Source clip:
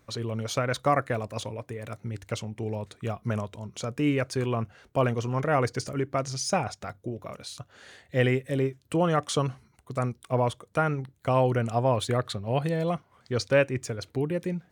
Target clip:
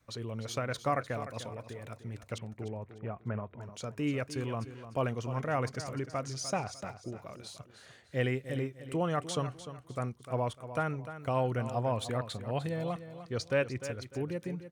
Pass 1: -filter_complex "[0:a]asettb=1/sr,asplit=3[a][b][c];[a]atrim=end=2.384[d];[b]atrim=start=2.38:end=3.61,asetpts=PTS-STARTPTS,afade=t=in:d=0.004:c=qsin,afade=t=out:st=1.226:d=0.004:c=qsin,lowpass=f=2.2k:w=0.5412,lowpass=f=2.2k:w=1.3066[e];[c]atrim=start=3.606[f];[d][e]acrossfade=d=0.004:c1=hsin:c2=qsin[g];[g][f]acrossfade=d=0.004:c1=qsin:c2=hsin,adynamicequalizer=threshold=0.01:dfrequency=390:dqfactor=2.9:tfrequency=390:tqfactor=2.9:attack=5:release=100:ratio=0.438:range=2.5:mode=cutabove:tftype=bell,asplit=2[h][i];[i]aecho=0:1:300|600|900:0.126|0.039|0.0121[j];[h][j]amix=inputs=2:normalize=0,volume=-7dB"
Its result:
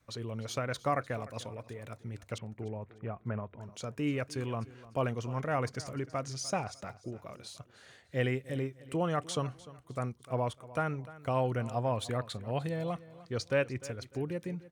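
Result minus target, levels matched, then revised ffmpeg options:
echo-to-direct -6 dB
-filter_complex "[0:a]asettb=1/sr,asplit=3[a][b][c];[a]atrim=end=2.384[d];[b]atrim=start=2.38:end=3.61,asetpts=PTS-STARTPTS,afade=t=in:d=0.004:c=qsin,afade=t=out:st=1.226:d=0.004:c=qsin,lowpass=f=2.2k:w=0.5412,lowpass=f=2.2k:w=1.3066[e];[c]atrim=start=3.606[f];[d][e]acrossfade=d=0.004:c1=hsin:c2=qsin[g];[g][f]acrossfade=d=0.004:c1=qsin:c2=hsin,adynamicequalizer=threshold=0.01:dfrequency=390:dqfactor=2.9:tfrequency=390:tqfactor=2.9:attack=5:release=100:ratio=0.438:range=2.5:mode=cutabove:tftype=bell,asplit=2[h][i];[i]aecho=0:1:300|600|900:0.251|0.0779|0.0241[j];[h][j]amix=inputs=2:normalize=0,volume=-7dB"

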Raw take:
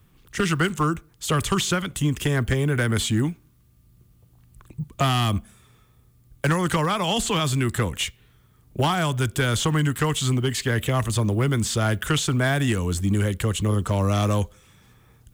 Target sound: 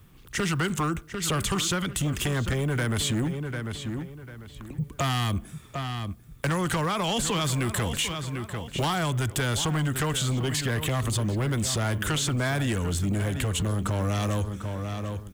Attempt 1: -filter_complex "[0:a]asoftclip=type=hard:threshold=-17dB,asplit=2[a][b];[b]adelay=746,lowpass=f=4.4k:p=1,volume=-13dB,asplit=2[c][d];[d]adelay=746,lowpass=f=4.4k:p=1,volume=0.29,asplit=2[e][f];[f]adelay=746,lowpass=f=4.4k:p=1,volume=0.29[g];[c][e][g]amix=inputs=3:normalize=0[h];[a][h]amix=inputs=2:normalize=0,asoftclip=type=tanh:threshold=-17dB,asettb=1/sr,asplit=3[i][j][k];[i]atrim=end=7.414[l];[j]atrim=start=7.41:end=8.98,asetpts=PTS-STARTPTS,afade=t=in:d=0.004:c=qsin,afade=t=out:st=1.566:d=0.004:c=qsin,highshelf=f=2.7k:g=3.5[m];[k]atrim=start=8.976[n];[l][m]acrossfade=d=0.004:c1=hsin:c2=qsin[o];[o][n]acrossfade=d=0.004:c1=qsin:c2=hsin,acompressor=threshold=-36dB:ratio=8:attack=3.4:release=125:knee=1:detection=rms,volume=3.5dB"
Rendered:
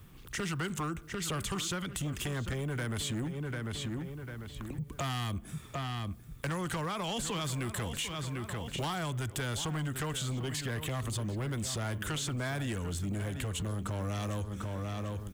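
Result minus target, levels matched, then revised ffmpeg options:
compressor: peak gain reduction +8.5 dB
-filter_complex "[0:a]asoftclip=type=hard:threshold=-17dB,asplit=2[a][b];[b]adelay=746,lowpass=f=4.4k:p=1,volume=-13dB,asplit=2[c][d];[d]adelay=746,lowpass=f=4.4k:p=1,volume=0.29,asplit=2[e][f];[f]adelay=746,lowpass=f=4.4k:p=1,volume=0.29[g];[c][e][g]amix=inputs=3:normalize=0[h];[a][h]amix=inputs=2:normalize=0,asoftclip=type=tanh:threshold=-17dB,asettb=1/sr,asplit=3[i][j][k];[i]atrim=end=7.414[l];[j]atrim=start=7.41:end=8.98,asetpts=PTS-STARTPTS,afade=t=in:d=0.004:c=qsin,afade=t=out:st=1.566:d=0.004:c=qsin,highshelf=f=2.7k:g=3.5[m];[k]atrim=start=8.976[n];[l][m]acrossfade=d=0.004:c1=hsin:c2=qsin[o];[o][n]acrossfade=d=0.004:c1=qsin:c2=hsin,acompressor=threshold=-26.5dB:ratio=8:attack=3.4:release=125:knee=1:detection=rms,volume=3.5dB"

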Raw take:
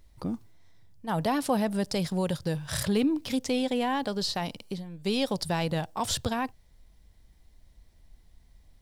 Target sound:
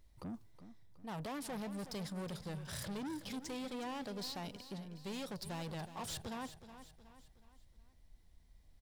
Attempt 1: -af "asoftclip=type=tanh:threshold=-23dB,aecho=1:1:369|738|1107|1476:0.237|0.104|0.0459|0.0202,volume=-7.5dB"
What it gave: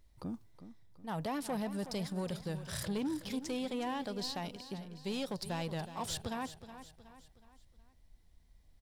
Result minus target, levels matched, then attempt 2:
soft clip: distortion -9 dB
-af "asoftclip=type=tanh:threshold=-32.5dB,aecho=1:1:369|738|1107|1476:0.237|0.104|0.0459|0.0202,volume=-7.5dB"

